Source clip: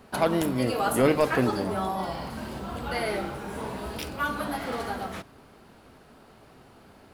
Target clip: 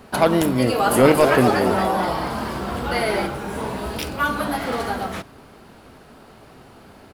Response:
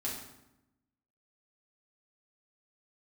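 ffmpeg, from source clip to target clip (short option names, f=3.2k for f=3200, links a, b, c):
-filter_complex "[0:a]asplit=3[a][b][c];[a]afade=t=out:st=0.89:d=0.02[d];[b]asplit=7[e][f][g][h][i][j][k];[f]adelay=233,afreqshift=130,volume=-7dB[l];[g]adelay=466,afreqshift=260,volume=-12.5dB[m];[h]adelay=699,afreqshift=390,volume=-18dB[n];[i]adelay=932,afreqshift=520,volume=-23.5dB[o];[j]adelay=1165,afreqshift=650,volume=-29.1dB[p];[k]adelay=1398,afreqshift=780,volume=-34.6dB[q];[e][l][m][n][o][p][q]amix=inputs=7:normalize=0,afade=t=in:st=0.89:d=0.02,afade=t=out:st=3.26:d=0.02[r];[c]afade=t=in:st=3.26:d=0.02[s];[d][r][s]amix=inputs=3:normalize=0,volume=7dB"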